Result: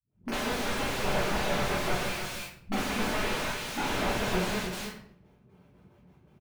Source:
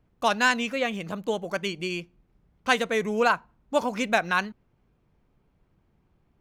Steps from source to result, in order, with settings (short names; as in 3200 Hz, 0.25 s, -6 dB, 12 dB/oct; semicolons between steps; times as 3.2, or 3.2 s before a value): gate with hold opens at -57 dBFS; HPF 69 Hz 24 dB/oct; 1.08–2.71 sample leveller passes 2; limiter -20 dBFS, peak gain reduction 14 dB; dispersion highs, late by 0.12 s, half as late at 340 Hz; wrapped overs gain 32 dB; echo 0.305 s -8 dB; shoebox room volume 95 m³, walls mixed, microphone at 1.5 m; slew limiter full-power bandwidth 50 Hz; gain +3 dB